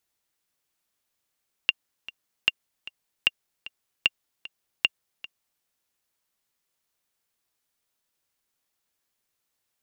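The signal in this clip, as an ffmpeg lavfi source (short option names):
-f lavfi -i "aevalsrc='pow(10,(-5.5-18.5*gte(mod(t,2*60/152),60/152))/20)*sin(2*PI*2790*mod(t,60/152))*exp(-6.91*mod(t,60/152)/0.03)':d=3.94:s=44100"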